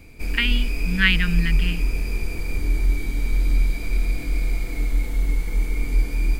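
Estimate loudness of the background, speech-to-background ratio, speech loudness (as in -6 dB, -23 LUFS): -26.0 LUFS, 2.5 dB, -23.5 LUFS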